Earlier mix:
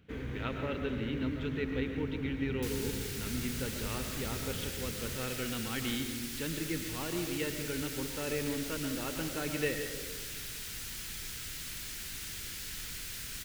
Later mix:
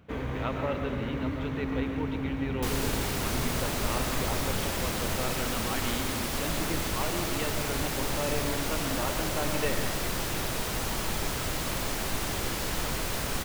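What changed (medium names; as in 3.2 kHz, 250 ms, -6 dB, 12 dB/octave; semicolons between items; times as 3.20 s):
first sound +5.5 dB; second sound: remove amplifier tone stack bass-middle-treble 5-5-5; master: add high-order bell 820 Hz +9.5 dB 1.3 oct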